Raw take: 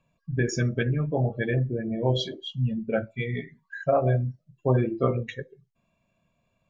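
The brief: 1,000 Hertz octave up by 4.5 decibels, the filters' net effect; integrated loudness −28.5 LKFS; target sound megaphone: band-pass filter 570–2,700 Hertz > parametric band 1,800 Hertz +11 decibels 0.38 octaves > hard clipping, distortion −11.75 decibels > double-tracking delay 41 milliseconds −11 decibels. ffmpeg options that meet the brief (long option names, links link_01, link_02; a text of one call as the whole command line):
ffmpeg -i in.wav -filter_complex "[0:a]highpass=570,lowpass=2700,equalizer=frequency=1000:width_type=o:gain=7.5,equalizer=frequency=1800:width_type=o:width=0.38:gain=11,asoftclip=type=hard:threshold=-20dB,asplit=2[link_01][link_02];[link_02]adelay=41,volume=-11dB[link_03];[link_01][link_03]amix=inputs=2:normalize=0,volume=1.5dB" out.wav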